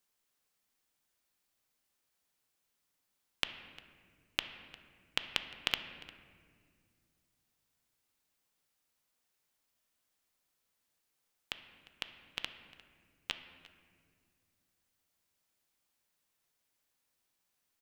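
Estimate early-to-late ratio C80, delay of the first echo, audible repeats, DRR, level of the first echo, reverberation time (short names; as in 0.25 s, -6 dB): 10.5 dB, 0.352 s, 1, 8.0 dB, -20.5 dB, 1.9 s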